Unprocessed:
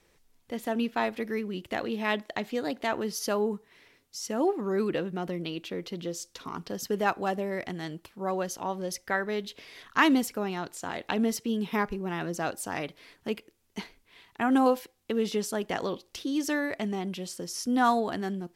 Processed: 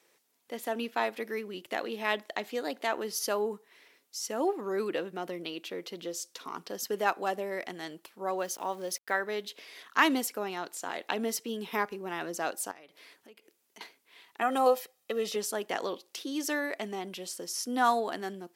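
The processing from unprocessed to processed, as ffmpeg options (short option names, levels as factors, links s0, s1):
-filter_complex "[0:a]asettb=1/sr,asplit=3[s0][s1][s2];[s0]atrim=end=8.394[s3];[s1]atrim=start=8.39:end=9.18,asetpts=PTS-STARTPTS,afade=t=in:d=0.004:c=qsin,afade=t=out:st=0.786:d=0.004:c=qsin,aeval=exprs='val(0)*gte(abs(val(0)),0.00316)':c=same[s4];[s2]atrim=start=9.176[s5];[s3][s4]acrossfade=d=0.004:c1=hsin:c2=qsin[s6];[s6][s5]acrossfade=d=0.004:c1=qsin:c2=hsin,asettb=1/sr,asplit=3[s7][s8][s9];[s7]atrim=end=12.714[s10];[s8]atrim=start=12.71:end=13.81,asetpts=PTS-STARTPTS,afade=t=in:d=0.004:c=qsin,afade=t=out:st=1.096:d=0.004:c=qsin,acompressor=threshold=0.00398:ratio=6:attack=3.2:release=140:knee=1:detection=peak[s11];[s9]atrim=start=13.806[s12];[s10][s11]acrossfade=d=0.004:c1=hsin:c2=qsin[s13];[s13][s12]acrossfade=d=0.004:c1=qsin:c2=hsin,asettb=1/sr,asplit=3[s14][s15][s16];[s14]atrim=end=14.424[s17];[s15]atrim=start=14.42:end=15.36,asetpts=PTS-STARTPTS,afade=t=in:d=0.004:c=qsin,afade=t=out:st=0.936:d=0.004:c=qsin,aecho=1:1:1.6:0.63,atrim=end_sample=41454[s18];[s16]atrim=start=15.356[s19];[s17][s18]acrossfade=d=0.004:c1=hsin:c2=qsin[s20];[s20][s19]acrossfade=d=0.004:c1=qsin:c2=hsin,highpass=340,highshelf=f=9300:g=6.5,volume=0.891"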